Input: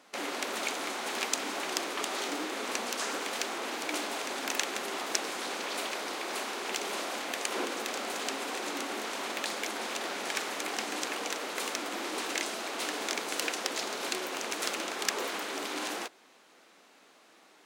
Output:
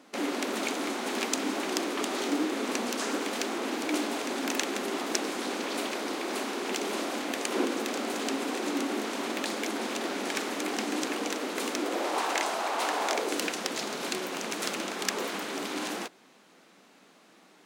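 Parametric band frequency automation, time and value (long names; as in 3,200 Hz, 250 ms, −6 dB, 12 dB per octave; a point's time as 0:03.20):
parametric band +11.5 dB 1.4 octaves
0:11.73 260 Hz
0:12.18 860 Hz
0:13.08 860 Hz
0:13.50 170 Hz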